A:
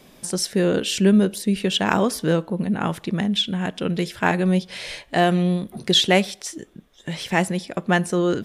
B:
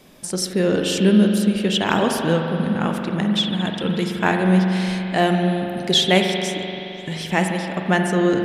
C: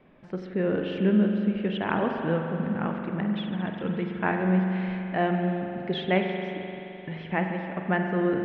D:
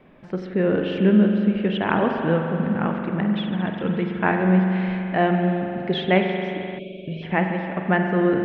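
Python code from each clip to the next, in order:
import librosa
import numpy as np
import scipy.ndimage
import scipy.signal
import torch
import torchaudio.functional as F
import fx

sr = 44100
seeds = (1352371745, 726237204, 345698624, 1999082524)

y1 = fx.rev_spring(x, sr, rt60_s=3.4, pass_ms=(43,), chirp_ms=45, drr_db=2.5)
y2 = scipy.signal.sosfilt(scipy.signal.butter(4, 2400.0, 'lowpass', fs=sr, output='sos'), y1)
y2 = y2 * 10.0 ** (-7.0 / 20.0)
y3 = fx.spec_box(y2, sr, start_s=6.79, length_s=0.44, low_hz=700.0, high_hz=2200.0, gain_db=-28)
y3 = y3 * 10.0 ** (5.5 / 20.0)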